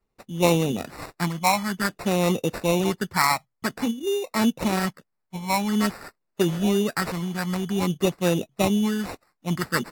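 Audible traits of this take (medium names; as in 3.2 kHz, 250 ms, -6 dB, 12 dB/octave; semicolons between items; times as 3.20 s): phasing stages 4, 0.51 Hz, lowest notch 400–2100 Hz; aliases and images of a low sample rate 3.2 kHz, jitter 0%; AAC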